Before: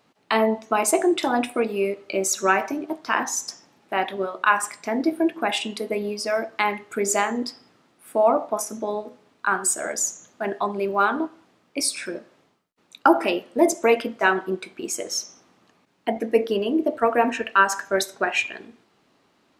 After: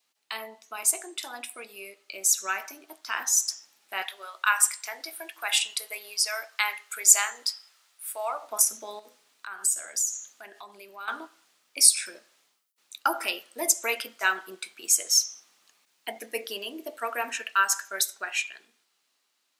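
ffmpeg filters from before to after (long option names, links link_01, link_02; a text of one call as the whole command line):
ffmpeg -i in.wav -filter_complex "[0:a]asettb=1/sr,asplit=3[link_01][link_02][link_03];[link_01]atrim=end=4.024[link_04];[link_02]atrim=start=4.02:end=8.43,asetpts=PTS-STARTPTS,afade=type=in:duration=0.004:curve=qsin,afade=type=out:start_time=4.406:duration=0.004:curve=qsin,highpass=690[link_05];[link_03]atrim=start=8.426[link_06];[link_04][link_05]acrossfade=duration=0.004:curve1=hsin:curve2=qsin[link_07];[link_07][link_06]acrossfade=duration=0.004:curve1=qsin:curve2=hsin,asettb=1/sr,asplit=3[link_08][link_09][link_10];[link_08]atrim=end=8.994[link_11];[link_09]atrim=start=8.99:end=11.08,asetpts=PTS-STARTPTS,afade=type=in:duration=0.004:curve=qsin,afade=type=out:start_time=2.086:duration=0.004:curve=qsin,acompressor=threshold=-33dB:ratio=3:attack=3.2:release=140:knee=1:detection=peak[link_12];[link_10]atrim=start=11.076[link_13];[link_11][link_12]acrossfade=duration=0.004:curve1=hsin:curve2=qsin[link_14];[link_14][link_13]acrossfade=duration=0.004:curve1=qsin:curve2=hsin,aderivative,dynaudnorm=framelen=900:gausssize=7:maxgain=11dB,adynamicequalizer=threshold=0.00708:dfrequency=1400:dqfactor=5.2:tfrequency=1400:tqfactor=5.2:attack=5:release=100:ratio=0.375:range=2.5:mode=boostabove:tftype=bell" out.wav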